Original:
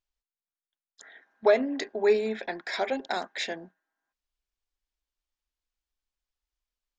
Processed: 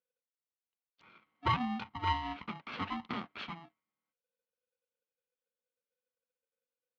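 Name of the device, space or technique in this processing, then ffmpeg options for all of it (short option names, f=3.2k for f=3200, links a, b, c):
ring modulator pedal into a guitar cabinet: -af "aeval=exprs='val(0)*sgn(sin(2*PI*500*n/s))':c=same,highpass=100,equalizer=f=110:t=q:w=4:g=-4,equalizer=f=220:t=q:w=4:g=7,equalizer=f=1.8k:t=q:w=4:g=-4,lowpass=f=3.4k:w=0.5412,lowpass=f=3.4k:w=1.3066,volume=-8dB"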